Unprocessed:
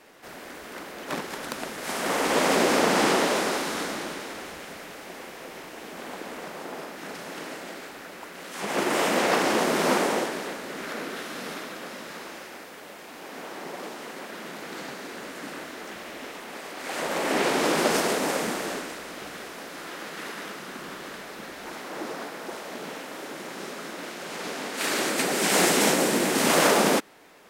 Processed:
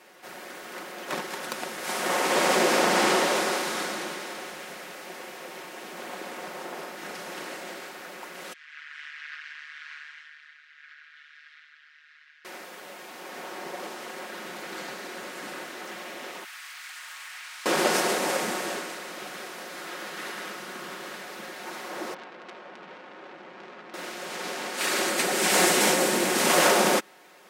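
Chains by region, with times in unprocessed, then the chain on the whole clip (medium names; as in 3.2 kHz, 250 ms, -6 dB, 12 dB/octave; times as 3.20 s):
8.53–12.45 s: ring modulator 75 Hz + elliptic high-pass 1.6 kHz, stop band 60 dB + tape spacing loss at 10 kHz 40 dB
16.44–17.66 s: high-pass 1.3 kHz 24 dB/octave + compression 20:1, threshold -38 dBFS + companded quantiser 6-bit
22.14–23.94 s: tape spacing loss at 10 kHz 34 dB + transformer saturation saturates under 3.1 kHz
whole clip: high-pass 300 Hz 6 dB/octave; comb 5.5 ms, depth 46%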